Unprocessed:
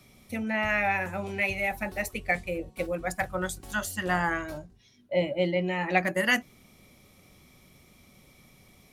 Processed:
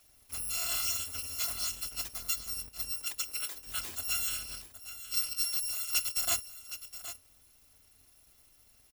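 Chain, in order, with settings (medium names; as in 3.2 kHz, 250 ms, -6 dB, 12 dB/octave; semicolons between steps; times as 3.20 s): bit-reversed sample order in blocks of 256 samples; 2.98–3.67 s: high-pass 290 Hz 24 dB/octave; delay 767 ms -12.5 dB; trim -6 dB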